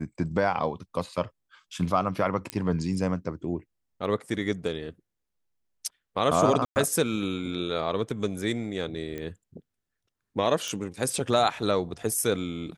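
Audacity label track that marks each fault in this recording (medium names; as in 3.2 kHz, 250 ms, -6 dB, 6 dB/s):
2.500000	2.500000	pop -14 dBFS
6.650000	6.760000	dropout 109 ms
9.180000	9.180000	pop -22 dBFS
10.680000	10.680000	pop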